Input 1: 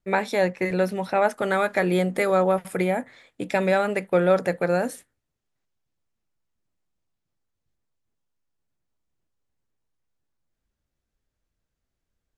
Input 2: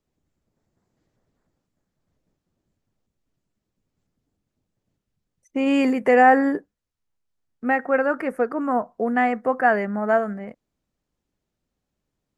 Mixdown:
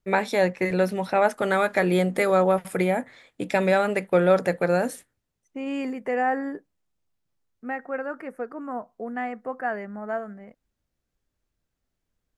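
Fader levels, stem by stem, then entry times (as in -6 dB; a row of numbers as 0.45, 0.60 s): +0.5, -10.0 dB; 0.00, 0.00 s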